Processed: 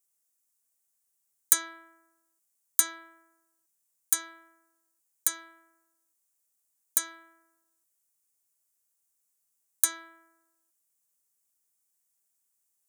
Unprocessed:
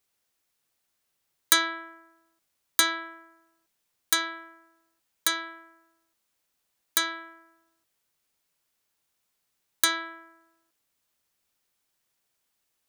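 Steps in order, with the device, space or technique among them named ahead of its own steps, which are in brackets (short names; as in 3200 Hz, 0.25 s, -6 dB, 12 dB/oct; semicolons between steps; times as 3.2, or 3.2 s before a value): budget condenser microphone (HPF 86 Hz; resonant high shelf 5500 Hz +12.5 dB, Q 1.5); gain -11.5 dB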